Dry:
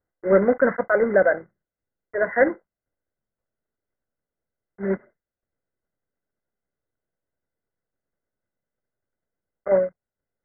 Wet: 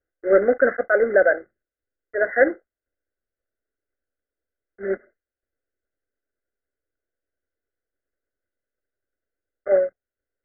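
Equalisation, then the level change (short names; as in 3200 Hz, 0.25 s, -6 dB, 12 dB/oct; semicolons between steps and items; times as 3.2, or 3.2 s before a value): dynamic EQ 760 Hz, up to +5 dB, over -33 dBFS, Q 1.8; synth low-pass 1600 Hz, resonance Q 2.5; fixed phaser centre 400 Hz, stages 4; 0.0 dB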